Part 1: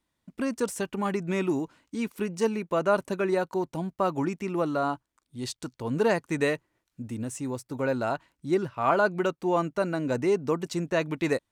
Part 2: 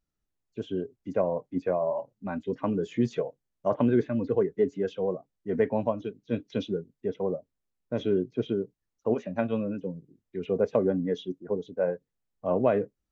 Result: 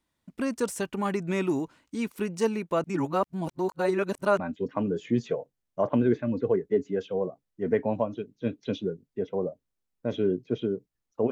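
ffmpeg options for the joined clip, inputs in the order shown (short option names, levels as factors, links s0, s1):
-filter_complex "[0:a]apad=whole_dur=11.31,atrim=end=11.31,asplit=2[s0][s1];[s0]atrim=end=2.842[s2];[s1]atrim=start=2.838:end=4.392,asetpts=PTS-STARTPTS,areverse[s3];[1:a]atrim=start=2.258:end=9.18[s4];[s2][s3]acrossfade=d=0.004:c1=hsin:c2=hsin[s5];[s5][s4]acrossfade=d=0.004:c1=hsin:c2=hsin"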